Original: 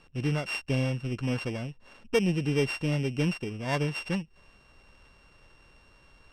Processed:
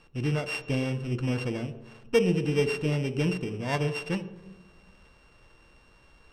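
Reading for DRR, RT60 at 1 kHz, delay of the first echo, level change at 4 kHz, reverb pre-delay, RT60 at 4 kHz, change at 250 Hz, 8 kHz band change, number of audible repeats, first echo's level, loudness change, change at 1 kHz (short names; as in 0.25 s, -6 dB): 9.5 dB, 1.0 s, none, 0.0 dB, 3 ms, 0.75 s, +0.5 dB, 0.0 dB, none, none, +1.0 dB, +0.5 dB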